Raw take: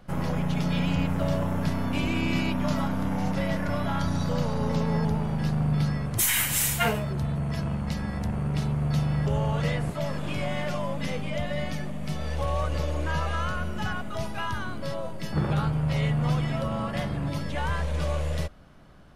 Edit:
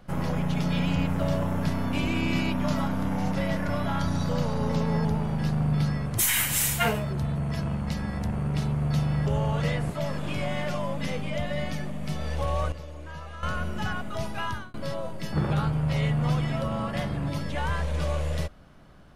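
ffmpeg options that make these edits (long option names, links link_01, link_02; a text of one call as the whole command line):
ffmpeg -i in.wav -filter_complex "[0:a]asplit=4[link_01][link_02][link_03][link_04];[link_01]atrim=end=12.722[link_05];[link_02]atrim=start=12.718:end=13.432,asetpts=PTS-STARTPTS,volume=-12dB[link_06];[link_03]atrim=start=13.428:end=14.74,asetpts=PTS-STARTPTS,afade=type=out:start_time=1.062:duration=0.25[link_07];[link_04]atrim=start=14.74,asetpts=PTS-STARTPTS,afade=type=in:duration=0.004:curve=hsin[link_08];[link_05][link_06]acrossfade=duration=0.004:curve1=hsin:curve2=hsin[link_09];[link_07][link_08]concat=n=2:v=0:a=1[link_10];[link_09][link_10]acrossfade=duration=0.004:curve1=hsin:curve2=hsin" out.wav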